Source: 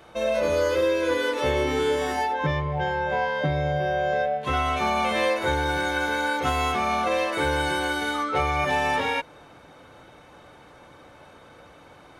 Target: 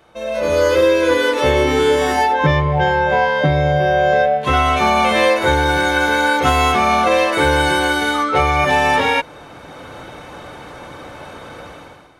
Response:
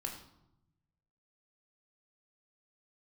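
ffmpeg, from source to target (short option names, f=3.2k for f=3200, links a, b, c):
-af "dynaudnorm=f=130:g=7:m=16.5dB,volume=-2dB"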